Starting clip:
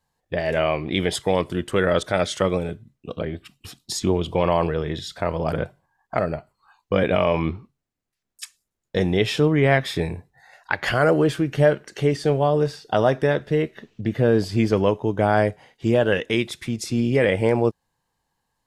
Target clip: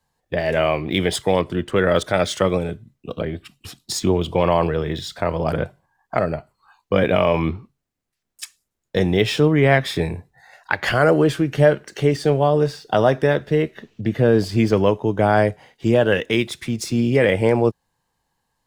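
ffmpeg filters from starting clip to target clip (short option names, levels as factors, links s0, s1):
-filter_complex "[0:a]asettb=1/sr,asplit=3[s0][s1][s2];[s0]atrim=end=1.394[s3];[s1]atrim=start=1.39:end=1.86,asetpts=PTS-STARTPTS,afade=t=in:d=0.004:c=qsin,afade=t=out:st=0.466:d=0.004:c=qsin,highshelf=f=6400:g=-12[s4];[s2]atrim=start=1.856[s5];[s3][s4]acrossfade=d=0.004:c1=hsin:c2=qsin[s6];[s6][s5]acrossfade=d=0.004:c1=qsin:c2=hsin,acrossover=split=110|3800[s7][s8][s9];[s9]acrusher=bits=3:mode=log:mix=0:aa=0.000001[s10];[s7][s8][s10]amix=inputs=3:normalize=0,volume=1.33"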